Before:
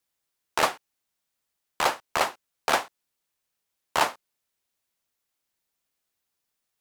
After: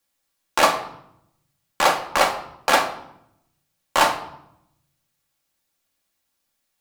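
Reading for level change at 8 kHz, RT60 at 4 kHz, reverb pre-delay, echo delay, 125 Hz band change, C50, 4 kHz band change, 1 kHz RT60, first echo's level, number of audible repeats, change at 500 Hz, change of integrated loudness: +6.0 dB, 0.55 s, 4 ms, none, +6.0 dB, 10.0 dB, +6.5 dB, 0.75 s, none, none, +7.0 dB, +6.0 dB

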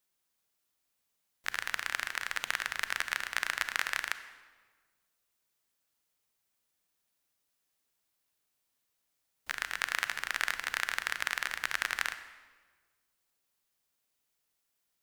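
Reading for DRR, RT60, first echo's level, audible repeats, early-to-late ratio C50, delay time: 11.0 dB, 1.5 s, none, none, 11.5 dB, none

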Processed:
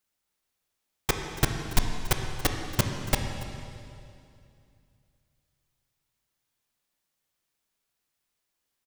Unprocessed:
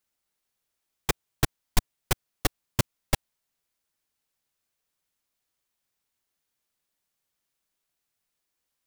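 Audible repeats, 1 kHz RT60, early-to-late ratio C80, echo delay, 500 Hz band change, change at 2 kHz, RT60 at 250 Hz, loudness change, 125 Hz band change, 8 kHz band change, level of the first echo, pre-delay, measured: 1, 2.4 s, 5.5 dB, 0.282 s, +1.5 dB, +1.5 dB, 2.8 s, +1.0 dB, +2.0 dB, +0.5 dB, -18.0 dB, 16 ms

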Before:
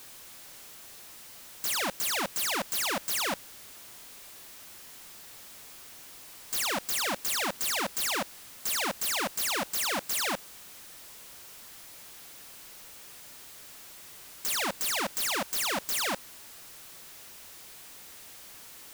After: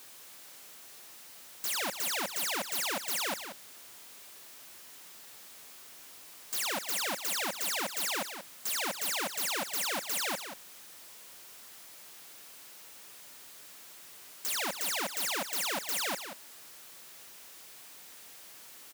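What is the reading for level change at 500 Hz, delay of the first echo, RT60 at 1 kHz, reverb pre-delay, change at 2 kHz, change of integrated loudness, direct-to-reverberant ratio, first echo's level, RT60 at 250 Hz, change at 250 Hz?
-3.0 dB, 0.183 s, none, none, -2.5 dB, -3.0 dB, none, -9.5 dB, none, -5.0 dB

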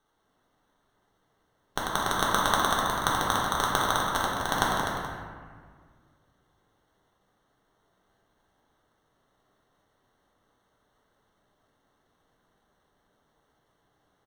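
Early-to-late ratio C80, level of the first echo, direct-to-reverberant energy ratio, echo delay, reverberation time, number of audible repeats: 0.0 dB, -7.5 dB, -6.0 dB, 0.251 s, 1.7 s, 1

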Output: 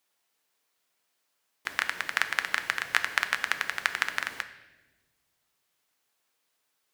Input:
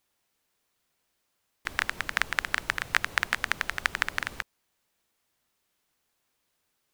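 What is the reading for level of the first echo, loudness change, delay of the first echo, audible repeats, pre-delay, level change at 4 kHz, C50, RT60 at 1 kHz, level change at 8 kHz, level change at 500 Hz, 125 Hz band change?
none, 0.0 dB, none, none, 4 ms, +0.5 dB, 12.5 dB, 0.95 s, +0.5 dB, -1.5 dB, under -10 dB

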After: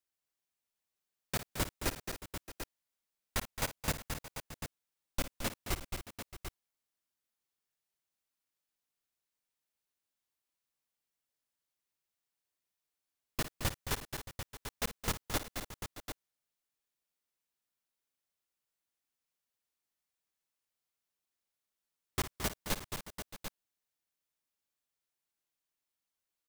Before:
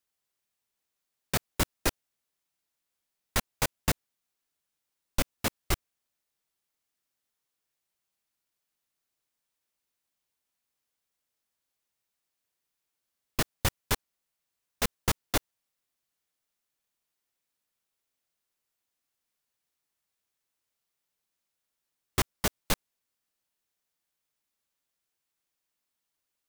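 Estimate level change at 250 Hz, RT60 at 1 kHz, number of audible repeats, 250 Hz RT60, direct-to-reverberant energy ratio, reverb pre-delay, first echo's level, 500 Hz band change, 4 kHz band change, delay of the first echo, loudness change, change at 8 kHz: -5.5 dB, none, 5, none, none, none, -13.0 dB, -5.5 dB, -5.5 dB, 56 ms, -8.0 dB, -5.5 dB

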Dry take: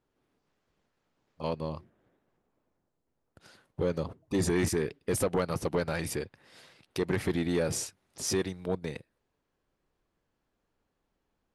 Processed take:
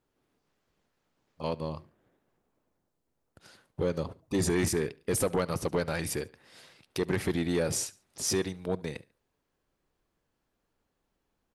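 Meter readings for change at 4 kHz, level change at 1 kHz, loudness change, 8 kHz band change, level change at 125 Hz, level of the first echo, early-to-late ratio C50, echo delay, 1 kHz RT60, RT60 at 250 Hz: +2.0 dB, 0.0 dB, +0.5 dB, +2.5 dB, 0.0 dB, -22.5 dB, none, 71 ms, none, none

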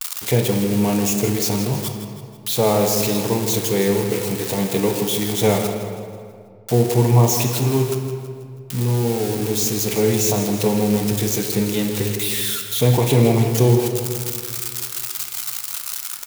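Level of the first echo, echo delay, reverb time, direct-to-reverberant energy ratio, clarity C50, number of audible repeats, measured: -11.5 dB, 0.162 s, 2.2 s, 2.5 dB, 4.5 dB, 4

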